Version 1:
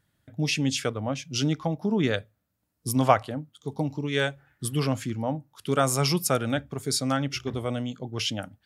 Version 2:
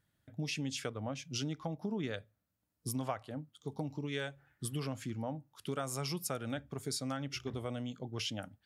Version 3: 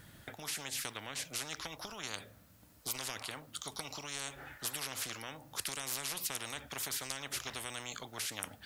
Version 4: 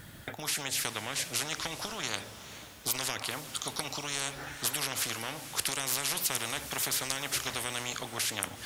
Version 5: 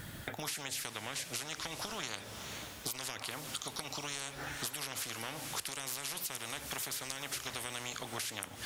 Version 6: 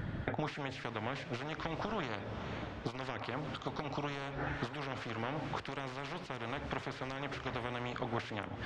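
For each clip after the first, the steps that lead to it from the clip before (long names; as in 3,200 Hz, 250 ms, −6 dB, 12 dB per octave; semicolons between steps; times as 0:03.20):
downward compressor 4 to 1, threshold −28 dBFS, peak gain reduction 13.5 dB; level −6.5 dB
every bin compressed towards the loudest bin 10 to 1; level +4.5 dB
feedback delay with all-pass diffusion 464 ms, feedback 48%, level −12.5 dB; level +7 dB
downward compressor 6 to 1, threshold −39 dBFS, peak gain reduction 13.5 dB; level +2.5 dB
head-to-tape spacing loss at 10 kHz 45 dB; level +9 dB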